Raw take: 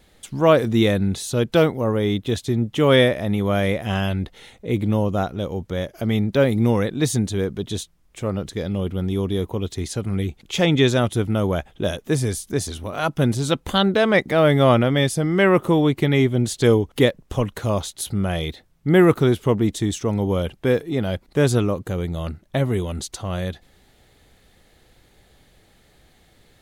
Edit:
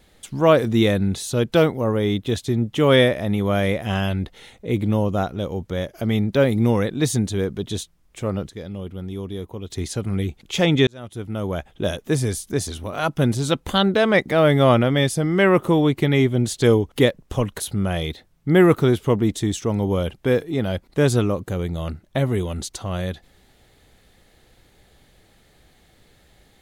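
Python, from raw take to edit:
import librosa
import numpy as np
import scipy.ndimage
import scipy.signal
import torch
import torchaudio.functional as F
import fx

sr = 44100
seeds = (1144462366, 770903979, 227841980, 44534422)

y = fx.edit(x, sr, fx.clip_gain(start_s=8.47, length_s=1.23, db=-7.5),
    fx.fade_in_span(start_s=10.87, length_s=1.01),
    fx.cut(start_s=17.6, length_s=0.39), tone=tone)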